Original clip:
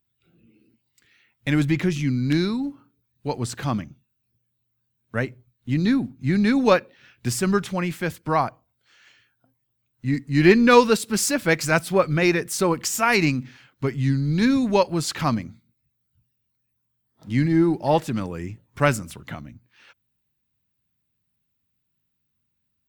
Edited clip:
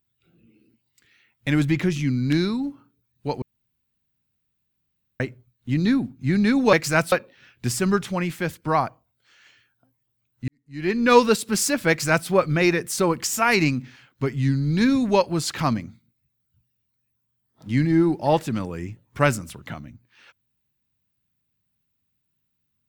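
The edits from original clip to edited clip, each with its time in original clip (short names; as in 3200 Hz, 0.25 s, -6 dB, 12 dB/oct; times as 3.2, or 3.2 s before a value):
3.42–5.2 room tone
10.09–10.8 fade in quadratic
11.5–11.89 copy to 6.73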